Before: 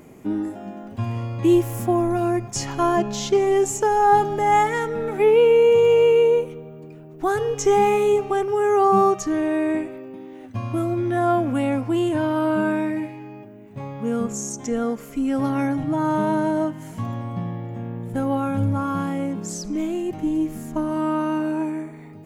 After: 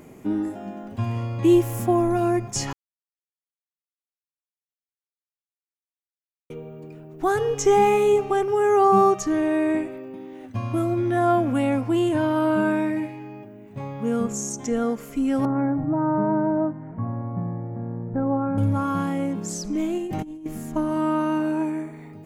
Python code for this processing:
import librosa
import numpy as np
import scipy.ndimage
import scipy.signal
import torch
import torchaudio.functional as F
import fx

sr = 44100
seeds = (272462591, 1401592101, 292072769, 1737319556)

y = fx.bessel_lowpass(x, sr, hz=1100.0, order=8, at=(15.45, 18.58))
y = fx.over_compress(y, sr, threshold_db=-29.0, ratio=-0.5, at=(19.98, 20.46))
y = fx.edit(y, sr, fx.silence(start_s=2.73, length_s=3.77), tone=tone)